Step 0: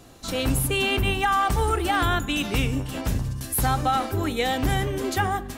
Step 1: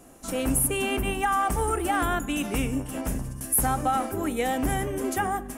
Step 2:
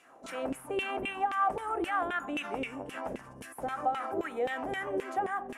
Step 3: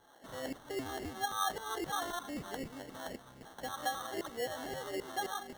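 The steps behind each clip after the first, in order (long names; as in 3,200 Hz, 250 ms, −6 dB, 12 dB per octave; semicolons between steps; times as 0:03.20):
graphic EQ with 15 bands 100 Hz −9 dB, 250 Hz +4 dB, 630 Hz +3 dB, 4,000 Hz −12 dB, 10,000 Hz +9 dB; level −3 dB
brickwall limiter −21.5 dBFS, peak gain reduction 10 dB; auto-filter band-pass saw down 3.8 Hz 410–2,600 Hz; level +6 dB
steady tone 1,600 Hz −61 dBFS; decimation without filtering 18×; level −6 dB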